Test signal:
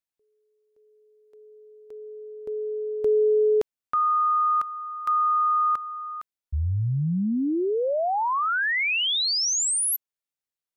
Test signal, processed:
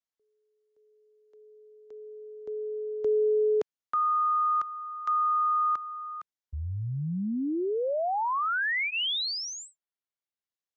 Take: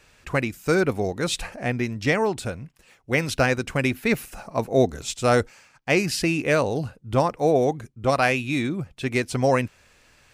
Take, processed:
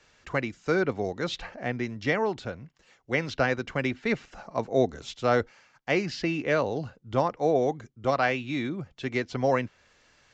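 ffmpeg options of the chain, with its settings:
-filter_complex "[0:a]lowshelf=f=150:g=-6.5,bandreject=f=2.5k:w=11,acrossover=split=200|1300|4700[a][b][c][d];[d]acompressor=threshold=-46dB:ratio=6:attack=1.9:release=878:detection=peak[e];[a][b][c][e]amix=inputs=4:normalize=0,aresample=16000,aresample=44100,volume=-3.5dB"

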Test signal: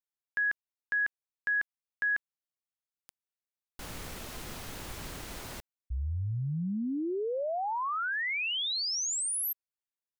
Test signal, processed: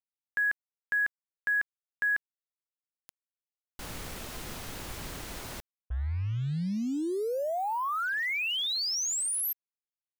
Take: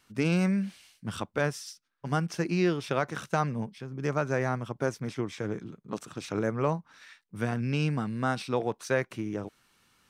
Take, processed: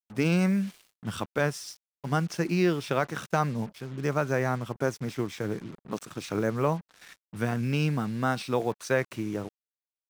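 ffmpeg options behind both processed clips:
-af "acrusher=bits=7:mix=0:aa=0.5,volume=1.5dB"

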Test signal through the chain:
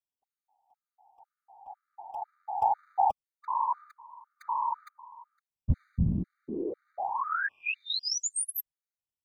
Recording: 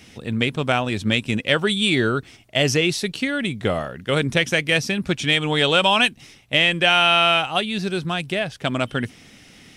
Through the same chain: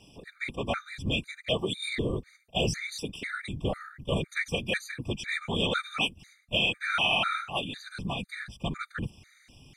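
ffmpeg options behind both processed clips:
-af "asubboost=boost=6:cutoff=95,afftfilt=real='hypot(re,im)*cos(2*PI*random(0))':imag='hypot(re,im)*sin(2*PI*random(1))':win_size=512:overlap=0.75,afftfilt=real='re*gt(sin(2*PI*2*pts/sr)*(1-2*mod(floor(b*sr/1024/1200),2)),0)':imag='im*gt(sin(2*PI*2*pts/sr)*(1-2*mod(floor(b*sr/1024/1200),2)),0)':win_size=1024:overlap=0.75,volume=-1.5dB"

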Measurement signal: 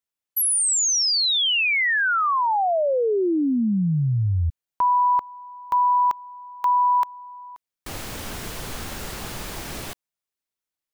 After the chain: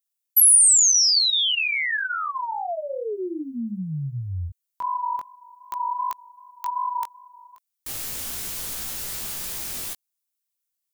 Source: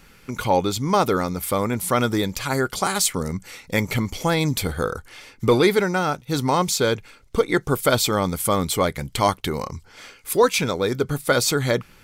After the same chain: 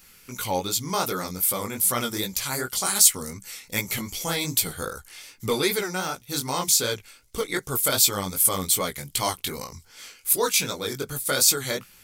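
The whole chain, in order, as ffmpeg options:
-af "flanger=delay=15.5:depth=6.5:speed=2.6,crystalizer=i=5:c=0,volume=-6.5dB"

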